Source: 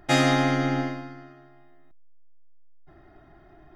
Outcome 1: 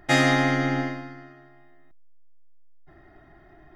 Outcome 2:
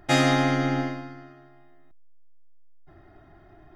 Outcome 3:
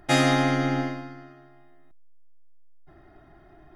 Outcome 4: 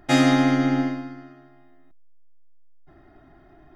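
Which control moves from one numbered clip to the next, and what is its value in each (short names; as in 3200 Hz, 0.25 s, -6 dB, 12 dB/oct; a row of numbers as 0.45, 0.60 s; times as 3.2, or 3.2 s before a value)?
bell, frequency: 1900, 94, 10000, 260 Hz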